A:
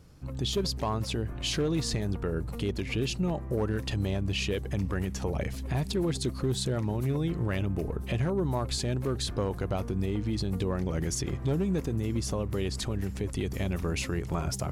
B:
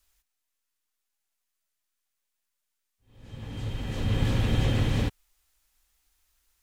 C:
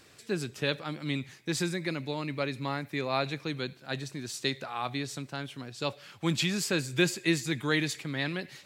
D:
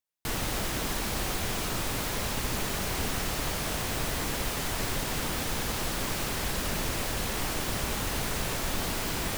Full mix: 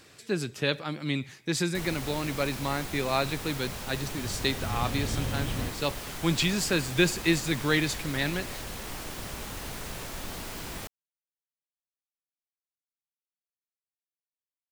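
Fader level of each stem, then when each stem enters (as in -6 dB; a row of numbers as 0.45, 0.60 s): off, -7.5 dB, +2.5 dB, -7.0 dB; off, 0.60 s, 0.00 s, 1.50 s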